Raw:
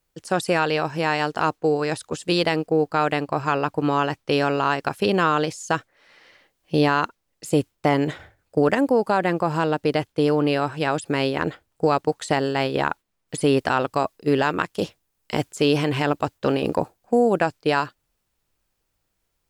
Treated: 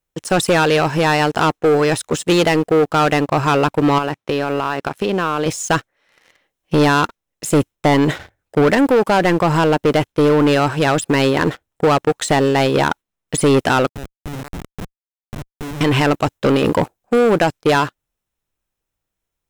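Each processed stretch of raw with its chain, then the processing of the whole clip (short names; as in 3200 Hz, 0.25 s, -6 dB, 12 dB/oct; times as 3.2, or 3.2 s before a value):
3.98–5.46 HPF 110 Hz + high shelf 5300 Hz -7.5 dB + compressor 3:1, threshold -28 dBFS
13.89–15.81 EQ curve 120 Hz 0 dB, 330 Hz -9 dB, 2600 Hz -20 dB + compressor 3:1, threshold -31 dBFS + Schmitt trigger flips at -34 dBFS
whole clip: notch 4600 Hz, Q 6.9; sample leveller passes 3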